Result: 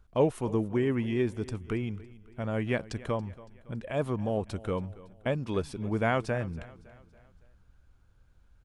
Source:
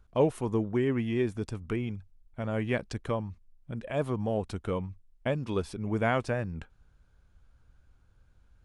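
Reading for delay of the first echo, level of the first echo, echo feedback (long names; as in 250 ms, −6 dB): 280 ms, −19.5 dB, 49%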